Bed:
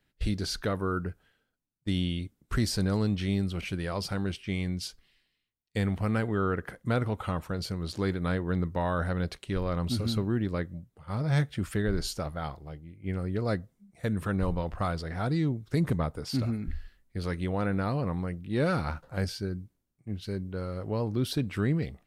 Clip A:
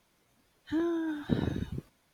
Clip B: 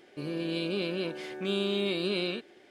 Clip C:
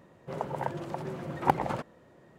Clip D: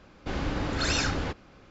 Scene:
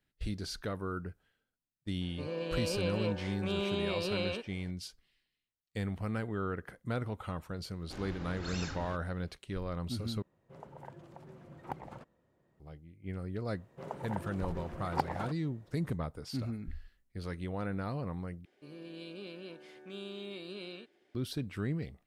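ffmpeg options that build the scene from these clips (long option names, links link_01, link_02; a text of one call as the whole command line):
ffmpeg -i bed.wav -i cue0.wav -i cue1.wav -i cue2.wav -i cue3.wav -filter_complex "[2:a]asplit=2[link_01][link_02];[3:a]asplit=2[link_03][link_04];[0:a]volume=-7.5dB[link_05];[link_01]highpass=120,equalizer=frequency=340:width_type=q:width=4:gain=-9,equalizer=frequency=500:width_type=q:width=4:gain=8,equalizer=frequency=960:width_type=q:width=4:gain=9,equalizer=frequency=3700:width_type=q:width=4:gain=-4,lowpass=frequency=7700:width=0.5412,lowpass=frequency=7700:width=1.3066[link_06];[link_03]lowshelf=frequency=110:gain=9.5[link_07];[link_05]asplit=3[link_08][link_09][link_10];[link_08]atrim=end=10.224[link_11];[link_07]atrim=end=2.38,asetpts=PTS-STARTPTS,volume=-17dB[link_12];[link_09]atrim=start=12.596:end=18.454[link_13];[link_02]atrim=end=2.7,asetpts=PTS-STARTPTS,volume=-14dB[link_14];[link_10]atrim=start=21.146[link_15];[link_06]atrim=end=2.7,asetpts=PTS-STARTPTS,volume=-3.5dB,afade=type=in:duration=0.004:curve=hsin,afade=type=out:start_time=2.696:duration=0.004:curve=hsin,adelay=2010[link_16];[4:a]atrim=end=1.7,asetpts=PTS-STARTPTS,volume=-14.5dB,afade=type=in:duration=0.004:curve=hsin,afade=type=out:start_time=1.696:duration=0.004:curve=hsin,adelay=7640[link_17];[link_04]atrim=end=2.38,asetpts=PTS-STARTPTS,volume=-7.5dB,afade=type=in:duration=0.004:curve=hsin,afade=type=out:start_time=2.376:duration=0.004:curve=hsin,adelay=13500[link_18];[link_11][link_12]acrossfade=duration=0.004:curve1=hsin:curve2=hsin[link_19];[link_19][link_13]acrossfade=duration=0.004:curve1=hsin:curve2=hsin[link_20];[link_20][link_14]acrossfade=duration=0.004:curve1=hsin:curve2=hsin[link_21];[link_21][link_15]acrossfade=duration=0.004:curve1=hsin:curve2=hsin[link_22];[link_22][link_16][link_17][link_18]amix=inputs=4:normalize=0" out.wav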